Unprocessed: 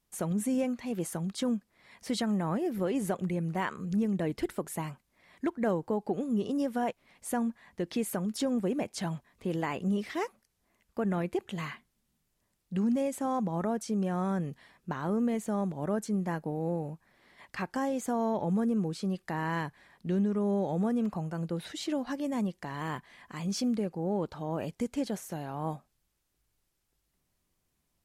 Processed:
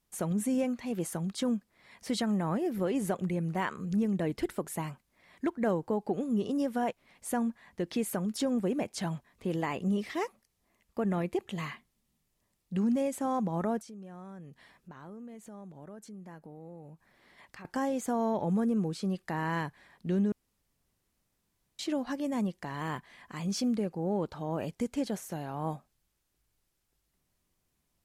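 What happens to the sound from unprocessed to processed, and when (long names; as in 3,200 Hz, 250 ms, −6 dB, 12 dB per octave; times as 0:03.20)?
0:09.55–0:12.78: notch filter 1,500 Hz, Q 10
0:13.81–0:17.65: downward compressor 2.5 to 1, threshold −52 dBFS
0:20.32–0:21.79: fill with room tone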